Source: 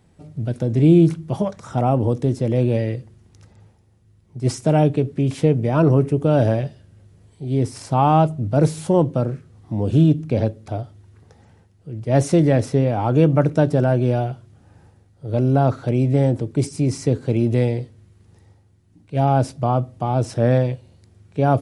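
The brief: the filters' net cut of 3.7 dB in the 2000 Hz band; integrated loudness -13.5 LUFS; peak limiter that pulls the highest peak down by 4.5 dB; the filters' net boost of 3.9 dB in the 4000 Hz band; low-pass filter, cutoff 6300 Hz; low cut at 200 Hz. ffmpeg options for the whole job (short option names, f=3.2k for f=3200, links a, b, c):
-af "highpass=200,lowpass=6.3k,equalizer=f=2k:t=o:g=-7.5,equalizer=f=4k:t=o:g=8.5,volume=9.5dB,alimiter=limit=-0.5dB:level=0:latency=1"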